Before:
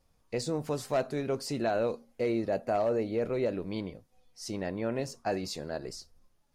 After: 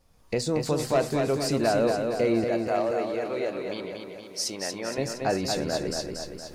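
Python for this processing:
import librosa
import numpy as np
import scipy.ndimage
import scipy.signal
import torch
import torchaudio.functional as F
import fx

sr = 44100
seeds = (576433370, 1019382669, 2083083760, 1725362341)

y = fx.recorder_agc(x, sr, target_db=-25.0, rise_db_per_s=23.0, max_gain_db=30)
y = fx.highpass(y, sr, hz=740.0, slope=6, at=(2.44, 4.98))
y = fx.echo_feedback(y, sr, ms=233, feedback_pct=57, wet_db=-5.0)
y = F.gain(torch.from_numpy(y), 5.0).numpy()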